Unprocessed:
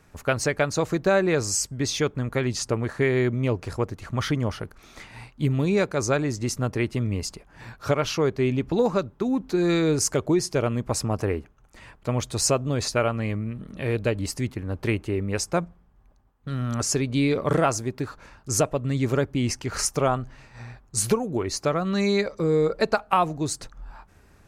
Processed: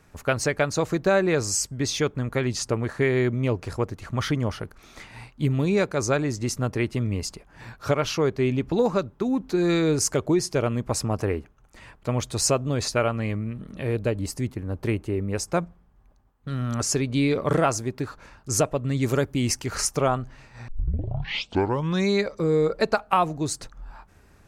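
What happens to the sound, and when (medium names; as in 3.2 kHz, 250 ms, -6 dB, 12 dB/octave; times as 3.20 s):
13.82–15.48 s: peaking EQ 2.8 kHz -5 dB 2.5 oct
19.01–19.73 s: treble shelf 5.7 kHz -> 8.5 kHz +11.5 dB
20.68 s: tape start 1.40 s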